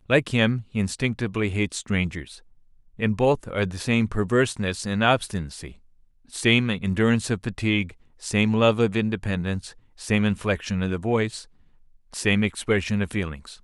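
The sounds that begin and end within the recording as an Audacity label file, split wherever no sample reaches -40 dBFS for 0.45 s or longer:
2.990000	5.720000	sound
6.320000	11.440000	sound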